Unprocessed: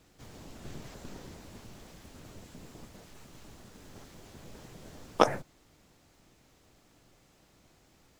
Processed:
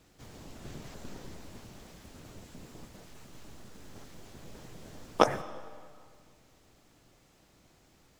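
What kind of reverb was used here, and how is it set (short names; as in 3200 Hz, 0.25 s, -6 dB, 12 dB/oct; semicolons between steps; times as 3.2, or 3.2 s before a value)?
digital reverb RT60 2 s, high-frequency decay 0.8×, pre-delay 60 ms, DRR 15.5 dB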